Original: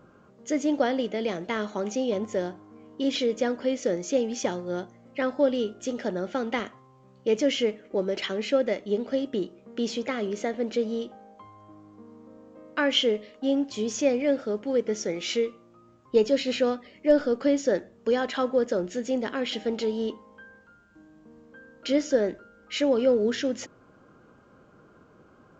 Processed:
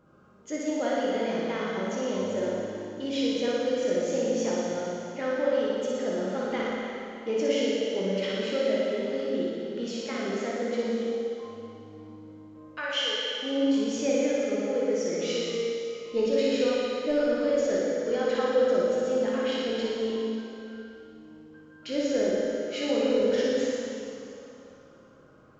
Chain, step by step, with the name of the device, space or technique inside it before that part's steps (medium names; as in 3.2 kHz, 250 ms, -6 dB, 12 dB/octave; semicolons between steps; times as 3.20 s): 12.71–13.33 s: Bessel high-pass 850 Hz, order 2; tunnel (flutter echo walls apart 10 m, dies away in 0.96 s; reverberation RT60 3.0 s, pre-delay 6 ms, DRR -3.5 dB); trim -8 dB